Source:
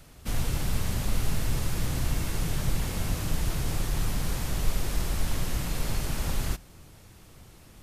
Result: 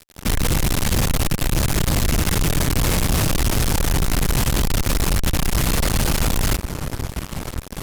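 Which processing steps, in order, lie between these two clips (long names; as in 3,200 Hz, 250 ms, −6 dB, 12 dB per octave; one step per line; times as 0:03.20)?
delay with a low-pass on its return 539 ms, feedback 78%, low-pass 1,800 Hz, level −21.5 dB
hum with harmonics 60 Hz, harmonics 7, −60 dBFS −5 dB per octave
fuzz pedal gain 41 dB, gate −44 dBFS
level −2.5 dB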